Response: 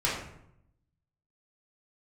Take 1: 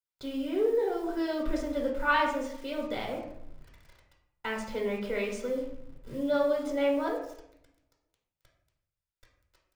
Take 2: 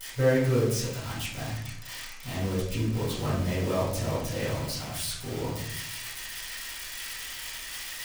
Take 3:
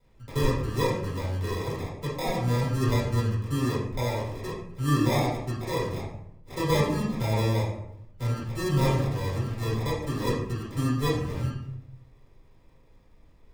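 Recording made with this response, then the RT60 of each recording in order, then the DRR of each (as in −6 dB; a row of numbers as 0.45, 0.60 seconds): 3; 0.75, 0.75, 0.75 seconds; −2.0, −12.5, −8.0 decibels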